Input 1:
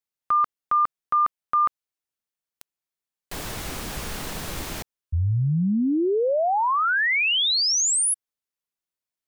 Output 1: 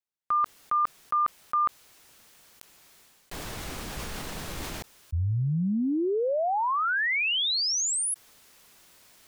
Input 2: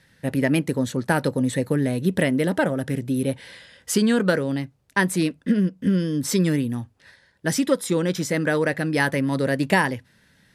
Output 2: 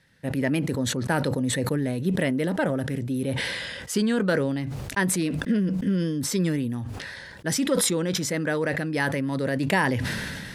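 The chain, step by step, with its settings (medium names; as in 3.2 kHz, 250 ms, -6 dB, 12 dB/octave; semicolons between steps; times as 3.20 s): treble shelf 9.4 kHz -4 dB; decay stretcher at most 25 dB/s; trim -4.5 dB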